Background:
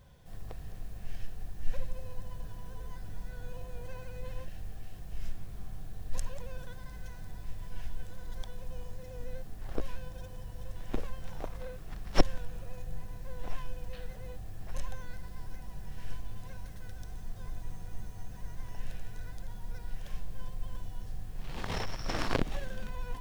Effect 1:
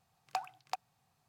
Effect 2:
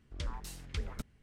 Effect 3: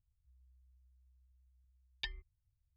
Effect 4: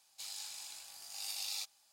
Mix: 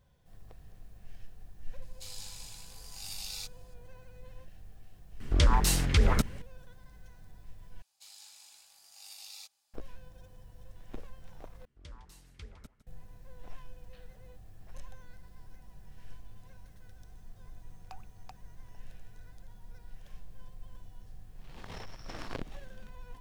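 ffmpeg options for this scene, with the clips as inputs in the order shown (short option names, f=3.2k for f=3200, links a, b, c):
-filter_complex "[4:a]asplit=2[a][b];[2:a]asplit=2[c][d];[0:a]volume=-9.5dB[e];[c]alimiter=level_in=33.5dB:limit=-1dB:release=50:level=0:latency=1[f];[d]aecho=1:1:158:0.2[g];[e]asplit=3[h][i][j];[h]atrim=end=7.824[k];[b]atrim=end=1.92,asetpts=PTS-STARTPTS,volume=-8dB[l];[i]atrim=start=9.736:end=11.654[m];[g]atrim=end=1.22,asetpts=PTS-STARTPTS,volume=-11dB[n];[j]atrim=start=12.866[o];[a]atrim=end=1.92,asetpts=PTS-STARTPTS,volume=-1dB,afade=t=in:d=0.004:c=hsin,afade=t=out:st=1.916:d=0.004:c=hsin,adelay=1820[p];[f]atrim=end=1.22,asetpts=PTS-STARTPTS,volume=-13dB,afade=t=in:d=0.004:c=hsin,afade=t=out:st=1.216:d=0.004:c=hsin,adelay=5200[q];[1:a]atrim=end=1.28,asetpts=PTS-STARTPTS,volume=-14dB,afade=t=in:d=0.004:c=hsin,afade=t=out:st=1.276:d=0.004:c=hsin,adelay=17560[r];[k][l]acrossfade=d=0.004:c1=hsin:c2=hsin[s];[s][m]acrossfade=d=0.004:c1=hsin:c2=hsin[t];[t][n]acrossfade=d=0.004:c1=hsin:c2=hsin[u];[u][o]acrossfade=d=0.004:c1=hsin:c2=hsin[v];[v][p][q][r]amix=inputs=4:normalize=0"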